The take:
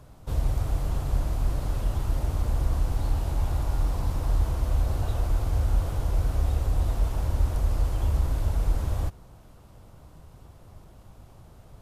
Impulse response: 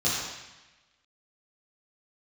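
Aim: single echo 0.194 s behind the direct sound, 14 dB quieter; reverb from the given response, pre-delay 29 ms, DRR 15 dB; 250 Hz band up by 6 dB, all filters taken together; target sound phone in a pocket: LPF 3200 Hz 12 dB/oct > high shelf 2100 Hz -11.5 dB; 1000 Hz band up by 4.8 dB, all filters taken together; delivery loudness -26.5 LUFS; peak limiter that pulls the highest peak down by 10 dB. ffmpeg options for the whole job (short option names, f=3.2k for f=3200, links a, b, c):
-filter_complex "[0:a]equalizer=f=250:t=o:g=8,equalizer=f=1k:t=o:g=8,alimiter=limit=-21.5dB:level=0:latency=1,aecho=1:1:194:0.2,asplit=2[a][b];[1:a]atrim=start_sample=2205,adelay=29[c];[b][c]afir=irnorm=-1:irlink=0,volume=-27dB[d];[a][d]amix=inputs=2:normalize=0,lowpass=3.2k,highshelf=f=2.1k:g=-11.5,volume=5.5dB"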